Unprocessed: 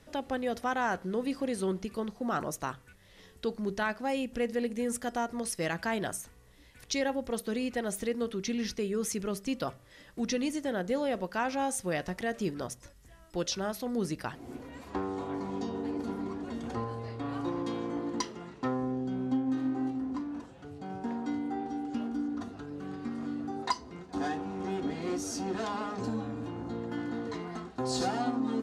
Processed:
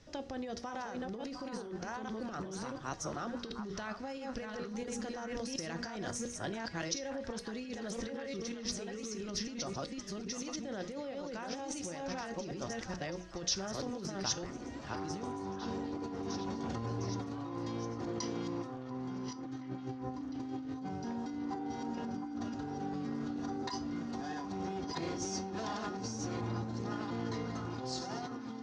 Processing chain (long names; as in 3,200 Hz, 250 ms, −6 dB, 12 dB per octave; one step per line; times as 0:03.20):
delay that plays each chunk backwards 695 ms, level −1 dB
low-shelf EQ 450 Hz +5 dB
mains-hum notches 60/120/180/240/300/360/420/480 Hz
compressor whose output falls as the input rises −32 dBFS, ratio −1
transistor ladder low-pass 6,500 Hz, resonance 55%
tuned comb filter 110 Hz, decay 0.32 s, harmonics odd, mix 60%
echo through a band-pass that steps 706 ms, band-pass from 1,100 Hz, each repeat 0.7 octaves, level −6 dB
level +9 dB